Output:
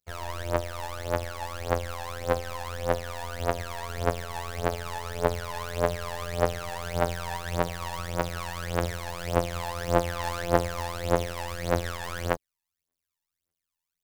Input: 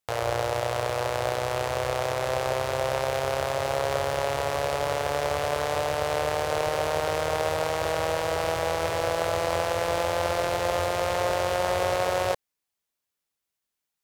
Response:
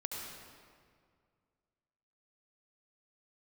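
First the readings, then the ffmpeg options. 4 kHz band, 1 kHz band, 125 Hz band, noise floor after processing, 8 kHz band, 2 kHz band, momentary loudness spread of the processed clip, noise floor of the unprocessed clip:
−5.5 dB, −4.5 dB, +2.0 dB, below −85 dBFS, −4.0 dB, −4.5 dB, 8 LU, −85 dBFS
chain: -af "asoftclip=type=hard:threshold=-24.5dB,afftfilt=real='hypot(re,im)*cos(PI*b)':imag='0':win_size=2048:overlap=0.75,aphaser=in_gain=1:out_gain=1:delay=1.2:decay=0.79:speed=1.7:type=triangular,aeval=exprs='0.631*(cos(1*acos(clip(val(0)/0.631,-1,1)))-cos(1*PI/2))+0.0447*(cos(7*acos(clip(val(0)/0.631,-1,1)))-cos(7*PI/2))':channel_layout=same,volume=2dB"

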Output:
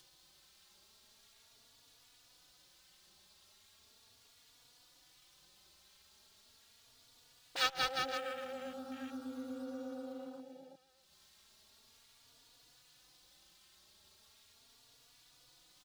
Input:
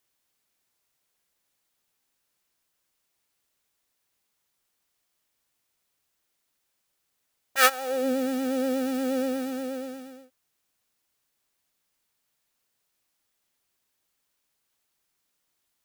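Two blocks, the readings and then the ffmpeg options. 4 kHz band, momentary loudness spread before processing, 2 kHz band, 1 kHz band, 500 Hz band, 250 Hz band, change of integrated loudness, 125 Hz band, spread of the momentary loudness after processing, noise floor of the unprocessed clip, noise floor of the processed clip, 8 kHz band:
−5.0 dB, 14 LU, −11.5 dB, −10.5 dB, −15.5 dB, −16.5 dB, −13.0 dB, can't be measured, 16 LU, −77 dBFS, −66 dBFS, −15.0 dB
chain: -filter_complex "[0:a]highshelf=frequency=8800:gain=-12,asplit=2[link_01][link_02];[link_02]aecho=0:1:190|361|514.9|653.4|778.1:0.631|0.398|0.251|0.158|0.1[link_03];[link_01][link_03]amix=inputs=2:normalize=0,acompressor=threshold=-36dB:ratio=2,afwtdn=0.00562,equalizer=frequency=250:width_type=o:width=1:gain=-10,equalizer=frequency=500:width_type=o:width=1:gain=-11,equalizer=frequency=1000:width_type=o:width=1:gain=-4,equalizer=frequency=2000:width_type=o:width=1:gain=-7,equalizer=frequency=4000:width_type=o:width=1:gain=9,asplit=2[link_04][link_05];[link_05]acrusher=samples=10:mix=1:aa=0.000001:lfo=1:lforange=6:lforate=1.3,volume=-9.5dB[link_06];[link_04][link_06]amix=inputs=2:normalize=0,acompressor=mode=upward:threshold=-43dB:ratio=2.5,asplit=2[link_07][link_08];[link_08]adelay=3.5,afreqshift=0.38[link_09];[link_07][link_09]amix=inputs=2:normalize=1,volume=3.5dB"

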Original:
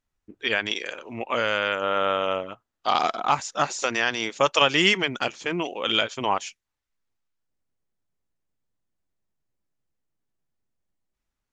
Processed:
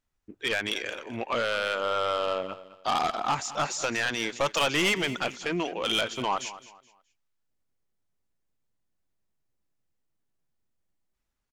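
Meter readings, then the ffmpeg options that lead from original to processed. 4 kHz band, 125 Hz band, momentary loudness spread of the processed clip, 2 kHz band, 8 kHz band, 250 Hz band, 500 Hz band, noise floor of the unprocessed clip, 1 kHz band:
−4.5 dB, −2.0 dB, 9 LU, −4.0 dB, 0.0 dB, −3.0 dB, −3.5 dB, −84 dBFS, −4.0 dB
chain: -af "asoftclip=type=tanh:threshold=-20dB,aecho=1:1:212|424|636:0.158|0.0475|0.0143"

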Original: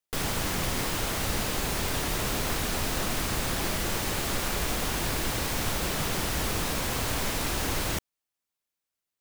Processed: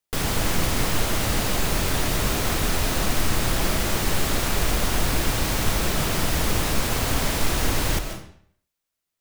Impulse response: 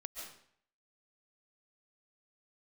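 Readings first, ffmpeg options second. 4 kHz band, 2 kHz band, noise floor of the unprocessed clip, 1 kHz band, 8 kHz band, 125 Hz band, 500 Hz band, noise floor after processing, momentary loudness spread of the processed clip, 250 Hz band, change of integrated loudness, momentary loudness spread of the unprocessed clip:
+4.5 dB, +4.5 dB, below −85 dBFS, +4.5 dB, +4.5 dB, +7.0 dB, +5.0 dB, −83 dBFS, 0 LU, +5.5 dB, +5.0 dB, 0 LU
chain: -filter_complex "[0:a]asplit=2[link_01][link_02];[1:a]atrim=start_sample=2205,lowshelf=frequency=230:gain=6.5[link_03];[link_02][link_03]afir=irnorm=-1:irlink=0,volume=3.5dB[link_04];[link_01][link_04]amix=inputs=2:normalize=0,volume=-1.5dB"

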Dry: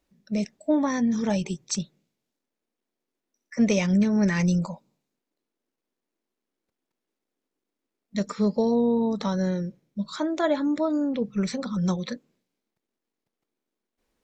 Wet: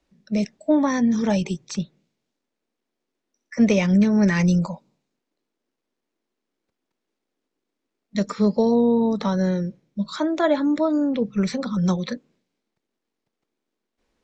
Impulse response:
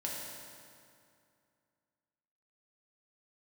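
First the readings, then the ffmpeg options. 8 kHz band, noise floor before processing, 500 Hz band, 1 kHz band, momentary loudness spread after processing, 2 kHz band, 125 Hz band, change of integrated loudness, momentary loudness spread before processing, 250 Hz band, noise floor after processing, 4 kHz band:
−2.0 dB, below −85 dBFS, +4.0 dB, +4.0 dB, 13 LU, +4.0 dB, +4.0 dB, +4.0 dB, 12 LU, +4.0 dB, −82 dBFS, +2.0 dB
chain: -filter_complex "[0:a]lowpass=7000,acrossover=split=260|540|3300[link_01][link_02][link_03][link_04];[link_04]alimiter=level_in=5dB:limit=-24dB:level=0:latency=1:release=317,volume=-5dB[link_05];[link_01][link_02][link_03][link_05]amix=inputs=4:normalize=0,volume=4dB"

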